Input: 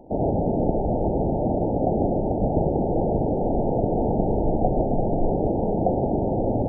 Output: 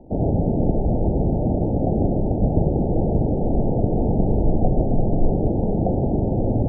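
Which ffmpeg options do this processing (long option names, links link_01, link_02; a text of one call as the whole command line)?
ffmpeg -i in.wav -filter_complex "[0:a]acrossover=split=190[link_01][link_02];[link_01]acontrast=80[link_03];[link_02]bandpass=frequency=270:width_type=q:width=0.51:csg=0[link_04];[link_03][link_04]amix=inputs=2:normalize=0" out.wav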